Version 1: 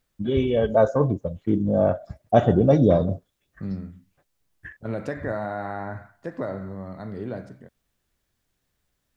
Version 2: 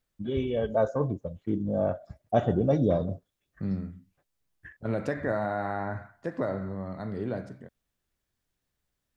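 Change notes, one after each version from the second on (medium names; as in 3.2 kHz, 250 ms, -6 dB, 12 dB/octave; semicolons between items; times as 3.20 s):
first voice -7.0 dB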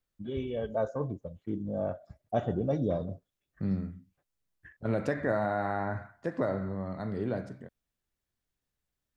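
first voice -5.5 dB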